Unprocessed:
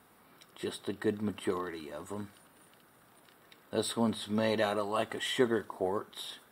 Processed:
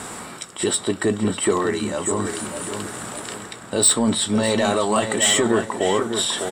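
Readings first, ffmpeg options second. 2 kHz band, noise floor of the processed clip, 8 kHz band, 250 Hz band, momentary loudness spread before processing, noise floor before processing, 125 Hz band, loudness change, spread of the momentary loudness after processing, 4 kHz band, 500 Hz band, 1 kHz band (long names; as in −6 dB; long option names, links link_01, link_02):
+13.0 dB, −39 dBFS, +26.0 dB, +12.0 dB, 13 LU, −62 dBFS, +13.0 dB, +13.0 dB, 14 LU, +15.5 dB, +11.5 dB, +12.5 dB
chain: -filter_complex "[0:a]acontrast=63,alimiter=limit=-17.5dB:level=0:latency=1:release=18,areverse,acompressor=mode=upward:threshold=-30dB:ratio=2.5,areverse,lowpass=frequency=7700:width_type=q:width=7.2,asoftclip=type=tanh:threshold=-16dB,asplit=2[link_01][link_02];[link_02]adelay=17,volume=-13dB[link_03];[link_01][link_03]amix=inputs=2:normalize=0,asplit=2[link_04][link_05];[link_05]adelay=601,lowpass=frequency=2600:poles=1,volume=-7dB,asplit=2[link_06][link_07];[link_07]adelay=601,lowpass=frequency=2600:poles=1,volume=0.38,asplit=2[link_08][link_09];[link_09]adelay=601,lowpass=frequency=2600:poles=1,volume=0.38,asplit=2[link_10][link_11];[link_11]adelay=601,lowpass=frequency=2600:poles=1,volume=0.38[link_12];[link_06][link_08][link_10][link_12]amix=inputs=4:normalize=0[link_13];[link_04][link_13]amix=inputs=2:normalize=0,volume=8dB"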